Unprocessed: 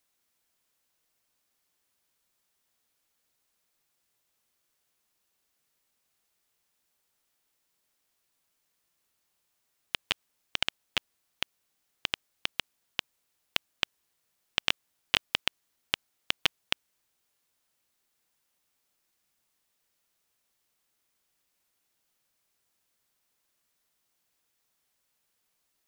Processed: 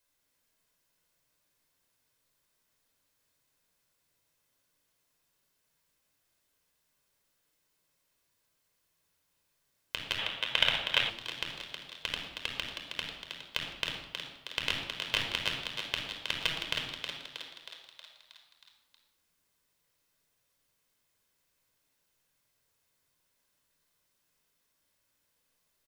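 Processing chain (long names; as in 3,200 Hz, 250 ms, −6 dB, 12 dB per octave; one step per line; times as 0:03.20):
echo with shifted repeats 317 ms, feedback 60%, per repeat +120 Hz, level −9 dB
in parallel at −1.5 dB: brickwall limiter −12.5 dBFS, peak gain reduction 9 dB
on the sum: flanger 0.16 Hz, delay 3.1 ms, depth 7.7 ms, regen −70%
convolution reverb RT60 0.95 s, pre-delay 26 ms, DRR 2 dB
gain on a spectral selection 0:10.19–0:11.09, 440–4,000 Hz +7 dB
level −4.5 dB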